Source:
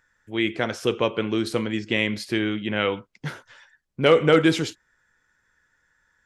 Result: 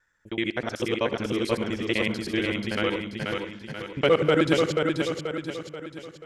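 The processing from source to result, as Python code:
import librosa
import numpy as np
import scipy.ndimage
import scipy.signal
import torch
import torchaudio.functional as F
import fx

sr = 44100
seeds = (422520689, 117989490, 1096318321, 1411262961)

y = fx.local_reverse(x, sr, ms=63.0)
y = fx.echo_feedback(y, sr, ms=484, feedback_pct=47, wet_db=-4)
y = y * librosa.db_to_amplitude(-3.5)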